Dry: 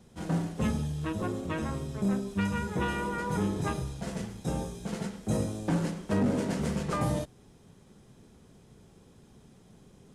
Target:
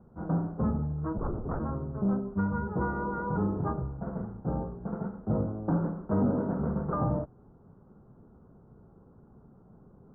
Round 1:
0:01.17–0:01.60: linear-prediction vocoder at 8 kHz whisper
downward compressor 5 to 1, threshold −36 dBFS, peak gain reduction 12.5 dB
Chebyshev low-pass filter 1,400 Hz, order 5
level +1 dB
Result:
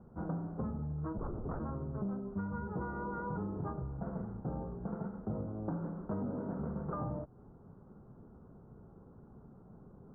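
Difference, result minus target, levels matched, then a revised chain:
downward compressor: peak gain reduction +12.5 dB
0:01.17–0:01.60: linear-prediction vocoder at 8 kHz whisper
Chebyshev low-pass filter 1,400 Hz, order 5
level +1 dB

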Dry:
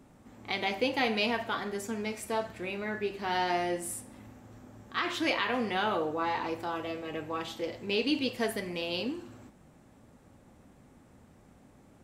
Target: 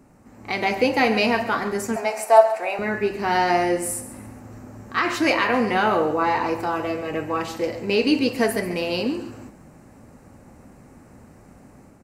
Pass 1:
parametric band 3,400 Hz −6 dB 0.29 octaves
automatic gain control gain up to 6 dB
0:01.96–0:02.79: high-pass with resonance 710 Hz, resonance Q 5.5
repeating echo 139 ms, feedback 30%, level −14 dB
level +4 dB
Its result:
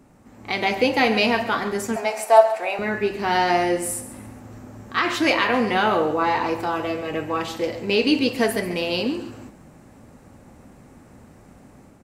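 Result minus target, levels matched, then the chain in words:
4,000 Hz band +3.0 dB
parametric band 3,400 Hz −15 dB 0.29 octaves
automatic gain control gain up to 6 dB
0:01.96–0:02.79: high-pass with resonance 710 Hz, resonance Q 5.5
repeating echo 139 ms, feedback 30%, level −14 dB
level +4 dB

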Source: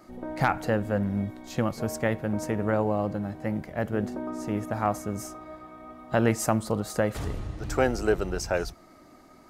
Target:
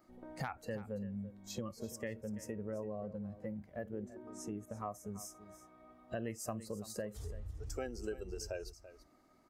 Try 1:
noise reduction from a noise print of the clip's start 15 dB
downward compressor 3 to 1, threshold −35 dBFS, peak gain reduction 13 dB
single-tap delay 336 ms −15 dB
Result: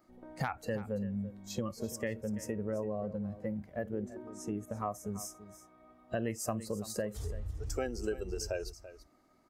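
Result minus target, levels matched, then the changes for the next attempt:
downward compressor: peak gain reduction −5.5 dB
change: downward compressor 3 to 1, threshold −43.5 dBFS, peak gain reduction 18.5 dB

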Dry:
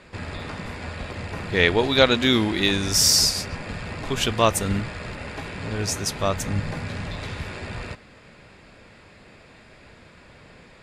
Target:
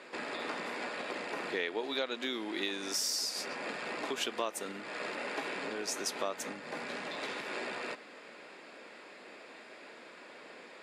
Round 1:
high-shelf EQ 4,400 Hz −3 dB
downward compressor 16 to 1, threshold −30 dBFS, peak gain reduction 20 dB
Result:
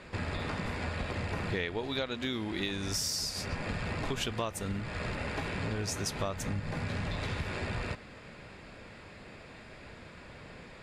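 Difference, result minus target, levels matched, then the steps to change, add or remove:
250 Hz band +3.5 dB
add after downward compressor: high-pass filter 280 Hz 24 dB per octave

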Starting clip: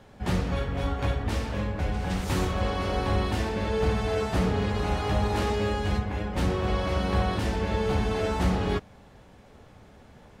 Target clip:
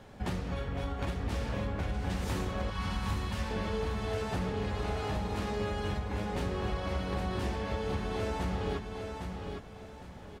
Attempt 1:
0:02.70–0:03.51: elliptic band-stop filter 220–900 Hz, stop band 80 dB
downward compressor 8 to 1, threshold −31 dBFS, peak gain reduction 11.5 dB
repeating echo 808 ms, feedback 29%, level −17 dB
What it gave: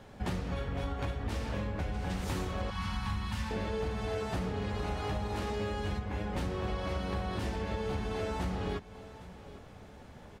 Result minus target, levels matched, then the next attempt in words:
echo-to-direct −11.5 dB
0:02.70–0:03.51: elliptic band-stop filter 220–900 Hz, stop band 80 dB
downward compressor 8 to 1, threshold −31 dBFS, peak gain reduction 11.5 dB
repeating echo 808 ms, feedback 29%, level −5.5 dB

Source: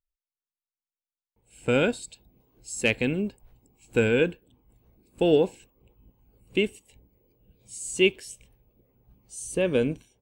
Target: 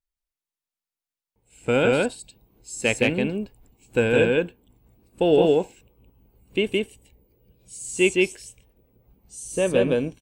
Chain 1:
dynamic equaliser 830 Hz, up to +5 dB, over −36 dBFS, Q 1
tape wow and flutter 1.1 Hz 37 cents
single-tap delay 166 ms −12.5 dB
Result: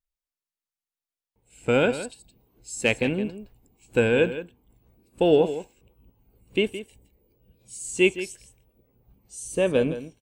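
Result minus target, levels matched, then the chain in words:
echo-to-direct −11.5 dB
dynamic equaliser 830 Hz, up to +5 dB, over −36 dBFS, Q 1
tape wow and flutter 1.1 Hz 37 cents
single-tap delay 166 ms −1 dB

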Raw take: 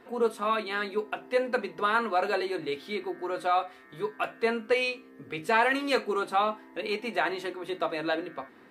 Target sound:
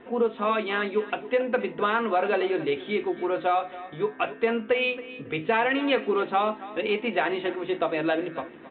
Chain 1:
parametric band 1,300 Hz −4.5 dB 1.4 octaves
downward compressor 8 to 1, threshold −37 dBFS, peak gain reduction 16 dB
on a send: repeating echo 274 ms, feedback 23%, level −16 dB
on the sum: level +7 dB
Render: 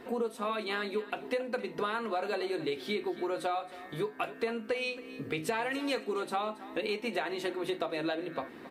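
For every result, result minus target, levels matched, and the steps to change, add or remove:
downward compressor: peak gain reduction +9.5 dB; 4,000 Hz band +3.5 dB
change: downward compressor 8 to 1, threshold −26 dBFS, peak gain reduction 6.5 dB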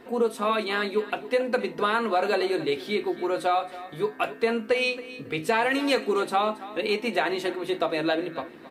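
4,000 Hz band +3.0 dB
add first: Butterworth low-pass 3,600 Hz 96 dB per octave

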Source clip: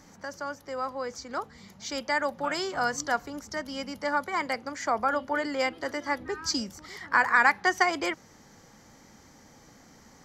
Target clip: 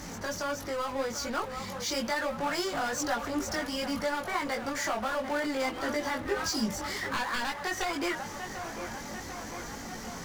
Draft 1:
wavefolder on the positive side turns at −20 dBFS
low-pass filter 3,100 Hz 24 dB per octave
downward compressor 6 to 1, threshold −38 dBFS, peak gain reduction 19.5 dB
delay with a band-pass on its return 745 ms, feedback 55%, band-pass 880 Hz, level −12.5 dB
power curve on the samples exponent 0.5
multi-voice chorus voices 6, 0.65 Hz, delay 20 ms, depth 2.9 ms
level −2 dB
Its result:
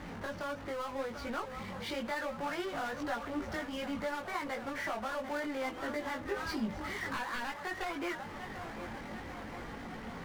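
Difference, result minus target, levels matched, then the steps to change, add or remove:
downward compressor: peak gain reduction +5.5 dB; 4,000 Hz band −3.5 dB
change: downward compressor 6 to 1, threshold −31 dBFS, peak gain reduction 14 dB
remove: low-pass filter 3,100 Hz 24 dB per octave

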